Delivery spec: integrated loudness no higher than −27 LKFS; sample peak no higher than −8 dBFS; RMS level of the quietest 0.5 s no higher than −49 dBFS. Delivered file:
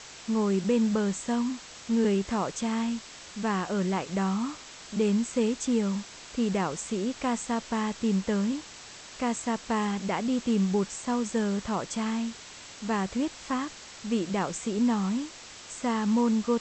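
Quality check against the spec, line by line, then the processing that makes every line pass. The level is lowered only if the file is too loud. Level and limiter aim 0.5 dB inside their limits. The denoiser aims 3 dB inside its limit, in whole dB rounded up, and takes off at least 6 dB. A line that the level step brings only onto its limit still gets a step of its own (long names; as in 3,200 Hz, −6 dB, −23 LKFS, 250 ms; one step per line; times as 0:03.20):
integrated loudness −29.0 LKFS: in spec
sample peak −14.5 dBFS: in spec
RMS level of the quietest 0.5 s −46 dBFS: out of spec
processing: broadband denoise 6 dB, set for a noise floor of −46 dBFS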